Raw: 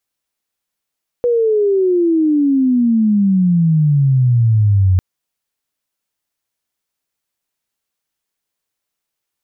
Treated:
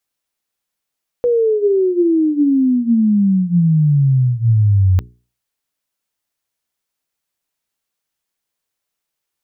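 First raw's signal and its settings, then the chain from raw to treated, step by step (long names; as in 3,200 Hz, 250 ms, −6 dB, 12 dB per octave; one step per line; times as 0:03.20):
glide logarithmic 490 Hz → 90 Hz −11 dBFS → −8.5 dBFS 3.75 s
mains-hum notches 60/120/180/240/300/360/420 Hz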